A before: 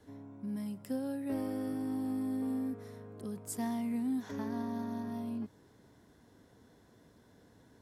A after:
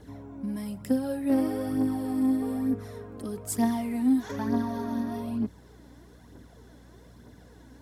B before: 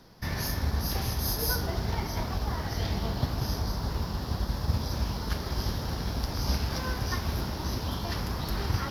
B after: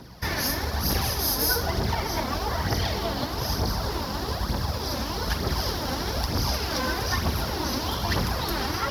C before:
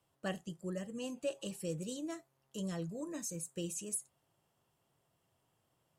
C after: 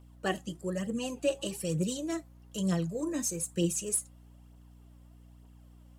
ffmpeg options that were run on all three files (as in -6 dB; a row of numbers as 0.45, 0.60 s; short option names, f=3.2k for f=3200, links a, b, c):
-filter_complex "[0:a]highpass=51,asplit=2[a][b];[b]alimiter=limit=-21.5dB:level=0:latency=1:release=218,volume=2dB[c];[a][c]amix=inputs=2:normalize=0,acrossover=split=260|3000[d][e][f];[d]acompressor=threshold=-30dB:ratio=6[g];[g][e][f]amix=inputs=3:normalize=0,aphaser=in_gain=1:out_gain=1:delay=4:decay=0.5:speed=1.1:type=triangular,aeval=exprs='val(0)+0.00224*(sin(2*PI*60*n/s)+sin(2*PI*2*60*n/s)/2+sin(2*PI*3*60*n/s)/3+sin(2*PI*4*60*n/s)/4+sin(2*PI*5*60*n/s)/5)':c=same"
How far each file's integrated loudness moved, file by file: +8.5, +4.5, +8.5 LU